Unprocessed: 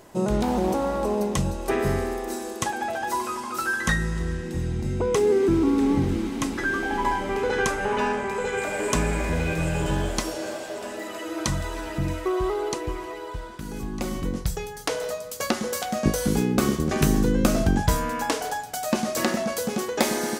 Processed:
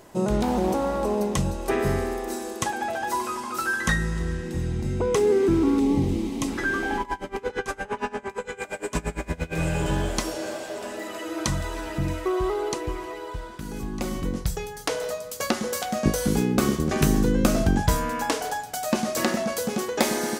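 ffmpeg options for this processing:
-filter_complex "[0:a]asettb=1/sr,asplit=3[a][b][c];[a]atrim=end=5.794[d];[b]atrim=start=5.79:end=6.48,asetpts=PTS-STARTPTS,afade=t=in:d=0.004:c=qsin,afade=t=out:st=0.686:d=0.004:c=qsin,equalizer=f=1.5k:t=o:w=0.59:g=-14[e];[c]atrim=start=6.476[f];[d][e]acrossfade=d=0.004:c1=hsin:c2=qsin[g];[g][f]acrossfade=d=0.004:c1=qsin:c2=hsin,asplit=3[h][i][j];[h]afade=t=out:st=6.98:d=0.02[k];[i]aeval=exprs='val(0)*pow(10,-24*(0.5-0.5*cos(2*PI*8.7*n/s))/20)':c=same,afade=t=in:st=6.98:d=0.02,afade=t=out:st=9.54:d=0.02[l];[j]afade=t=in:st=9.54:d=0.02[m];[k][l][m]amix=inputs=3:normalize=0"

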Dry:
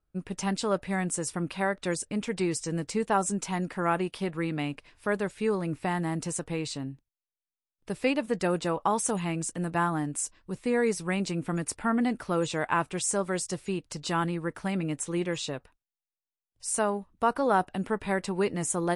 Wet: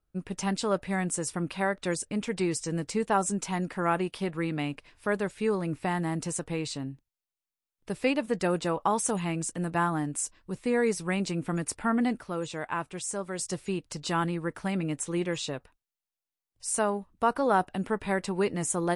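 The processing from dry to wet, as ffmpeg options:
-filter_complex "[0:a]asplit=3[a][b][c];[a]atrim=end=12.192[d];[b]atrim=start=12.188:end=13.392,asetpts=PTS-STARTPTS,volume=-5.5dB[e];[c]atrim=start=13.388[f];[d][e]acrossfade=d=0.004:c1=hsin:c2=hsin[g];[g][f]acrossfade=d=0.004:c1=hsin:c2=hsin"

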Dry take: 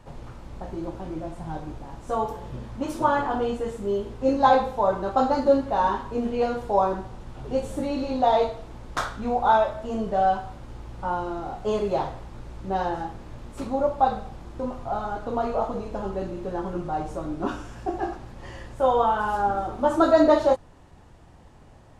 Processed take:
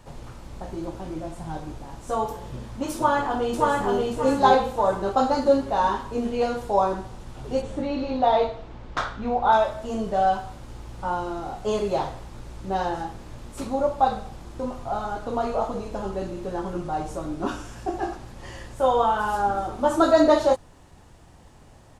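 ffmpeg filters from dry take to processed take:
-filter_complex "[0:a]asplit=2[a][b];[b]afade=t=in:st=2.95:d=0.01,afade=t=out:st=3.96:d=0.01,aecho=0:1:580|1160|1740|2320|2900:0.891251|0.311938|0.109178|0.0382124|0.0133743[c];[a][c]amix=inputs=2:normalize=0,asplit=3[d][e][f];[d]afade=t=out:st=7.61:d=0.02[g];[e]lowpass=3.5k,afade=t=in:st=7.61:d=0.02,afade=t=out:st=9.51:d=0.02[h];[f]afade=t=in:st=9.51:d=0.02[i];[g][h][i]amix=inputs=3:normalize=0,highshelf=f=4.2k:g=9"

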